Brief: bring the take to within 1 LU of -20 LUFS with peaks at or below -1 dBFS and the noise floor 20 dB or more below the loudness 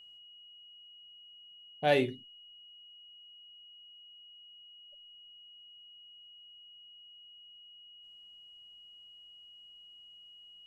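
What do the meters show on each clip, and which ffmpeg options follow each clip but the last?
steady tone 2.9 kHz; tone level -52 dBFS; loudness -30.5 LUFS; peak level -12.0 dBFS; loudness target -20.0 LUFS
-> -af "bandreject=f=2900:w=30"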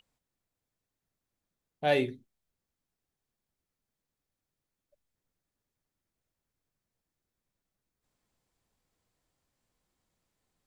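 steady tone not found; loudness -30.0 LUFS; peak level -12.0 dBFS; loudness target -20.0 LUFS
-> -af "volume=3.16"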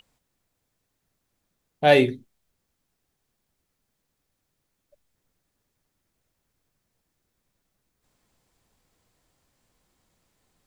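loudness -20.0 LUFS; peak level -2.0 dBFS; noise floor -78 dBFS

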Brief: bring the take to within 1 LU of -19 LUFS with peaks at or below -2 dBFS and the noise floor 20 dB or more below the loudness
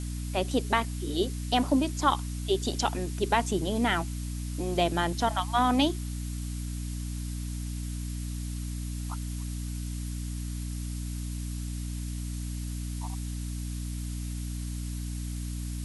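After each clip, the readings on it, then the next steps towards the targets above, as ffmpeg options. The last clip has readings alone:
hum 60 Hz; highest harmonic 300 Hz; hum level -32 dBFS; noise floor -35 dBFS; noise floor target -52 dBFS; loudness -31.5 LUFS; peak level -9.0 dBFS; loudness target -19.0 LUFS
-> -af "bandreject=f=60:t=h:w=4,bandreject=f=120:t=h:w=4,bandreject=f=180:t=h:w=4,bandreject=f=240:t=h:w=4,bandreject=f=300:t=h:w=4"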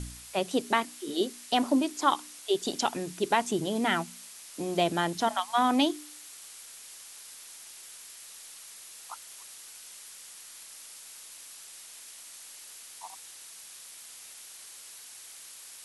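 hum not found; noise floor -48 dBFS; noise floor target -49 dBFS
-> -af "afftdn=nr=6:nf=-48"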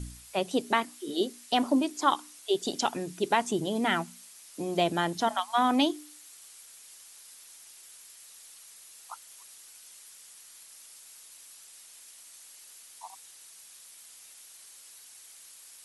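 noise floor -52 dBFS; loudness -29.0 LUFS; peak level -9.5 dBFS; loudness target -19.0 LUFS
-> -af "volume=3.16,alimiter=limit=0.794:level=0:latency=1"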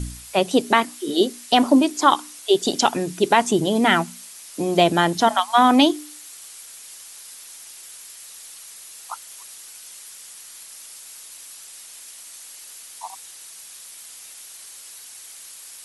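loudness -19.0 LUFS; peak level -2.0 dBFS; noise floor -42 dBFS

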